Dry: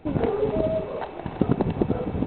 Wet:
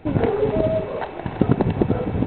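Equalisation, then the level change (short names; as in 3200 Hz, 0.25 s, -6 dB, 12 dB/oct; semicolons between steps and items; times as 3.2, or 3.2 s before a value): bell 110 Hz +5.5 dB 0.36 oct; bell 1800 Hz +3.5 dB 0.88 oct; notch 1200 Hz, Q 25; +3.5 dB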